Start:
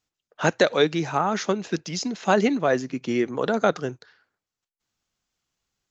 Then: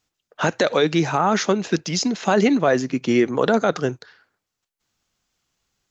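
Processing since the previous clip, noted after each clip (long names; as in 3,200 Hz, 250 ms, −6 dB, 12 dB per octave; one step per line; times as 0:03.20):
brickwall limiter −14 dBFS, peak gain reduction 9 dB
level +6.5 dB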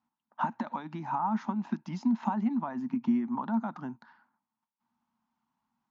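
downward compressor 10 to 1, threshold −26 dBFS, peak gain reduction 14 dB
pair of resonant band-passes 460 Hz, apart 2 octaves
level +8 dB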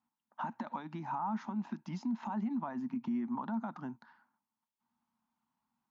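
brickwall limiter −25 dBFS, peak gain reduction 9.5 dB
level −3.5 dB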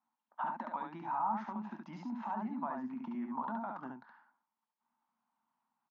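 resonant band-pass 920 Hz, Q 0.66
on a send: ambience of single reflections 23 ms −15 dB, 70 ms −3.5 dB
on the sum: level +1.5 dB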